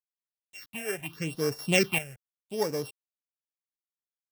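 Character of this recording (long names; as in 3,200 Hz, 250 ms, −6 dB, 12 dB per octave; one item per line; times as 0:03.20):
a buzz of ramps at a fixed pitch in blocks of 16 samples
chopped level 0.63 Hz, depth 65%, duty 25%
a quantiser's noise floor 10 bits, dither none
phaser sweep stages 6, 0.83 Hz, lowest notch 270–3,000 Hz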